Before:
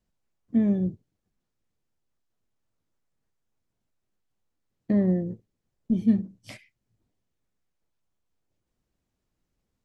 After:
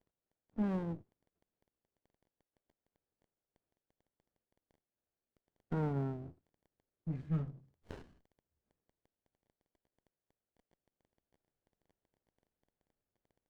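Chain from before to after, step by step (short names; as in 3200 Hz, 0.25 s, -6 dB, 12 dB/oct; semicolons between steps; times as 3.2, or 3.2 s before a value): speed glide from 95% -> 51%; three-band isolator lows -16 dB, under 380 Hz, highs -13 dB, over 2100 Hz; crackle 20/s -65 dBFS; running maximum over 33 samples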